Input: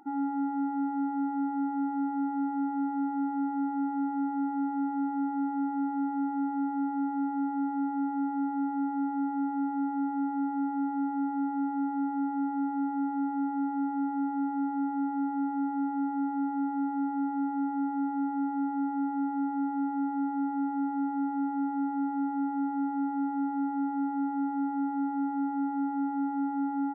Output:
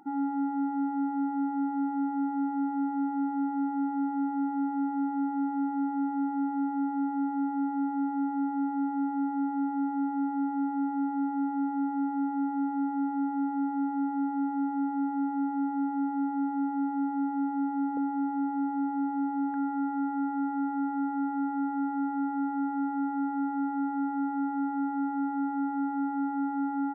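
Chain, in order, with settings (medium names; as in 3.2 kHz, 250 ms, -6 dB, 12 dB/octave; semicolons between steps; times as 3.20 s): peaking EQ 180 Hz +10 dB 0.36 oct, from 17.97 s 500 Hz, from 19.54 s 1.6 kHz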